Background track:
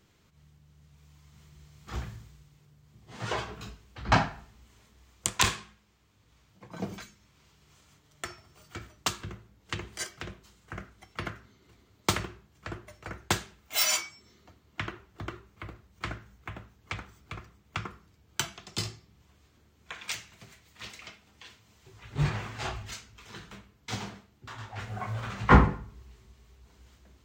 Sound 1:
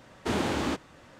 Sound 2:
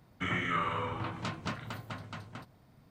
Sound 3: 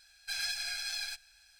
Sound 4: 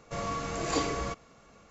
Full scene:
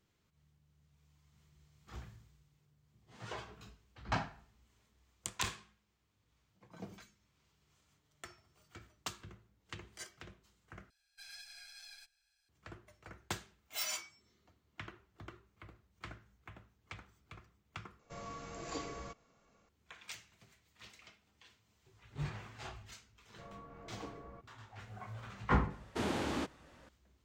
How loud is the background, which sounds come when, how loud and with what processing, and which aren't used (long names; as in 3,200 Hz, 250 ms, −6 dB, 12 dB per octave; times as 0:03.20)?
background track −12.5 dB
0:10.90: overwrite with 3 −17 dB
0:17.99: overwrite with 4 −13 dB
0:23.27: mix in 4 −18 dB + treble cut that deepens with the level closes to 1,300 Hz, closed at −30 dBFS
0:25.70: mix in 1 −7.5 dB
not used: 2